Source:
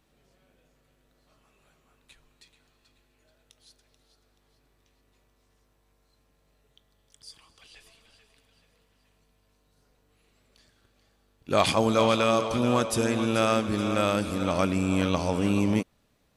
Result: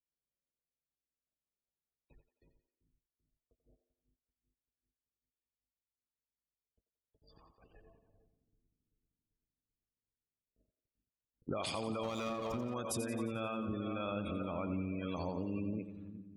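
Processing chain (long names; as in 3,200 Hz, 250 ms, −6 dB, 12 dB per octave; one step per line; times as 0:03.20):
noise gate −58 dBFS, range −39 dB
low-pass that shuts in the quiet parts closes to 680 Hz, open at −25.5 dBFS
gate on every frequency bin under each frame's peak −20 dB strong
high-shelf EQ 4,500 Hz +10.5 dB
brickwall limiter −19.5 dBFS, peak gain reduction 11 dB
downward compressor 6 to 1, threshold −37 dBFS, peak gain reduction 12.5 dB
on a send: echo with a time of its own for lows and highs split 310 Hz, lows 388 ms, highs 88 ms, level −10 dB
0:12.03–0:12.74: on the sum: windowed peak hold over 5 samples
level +1 dB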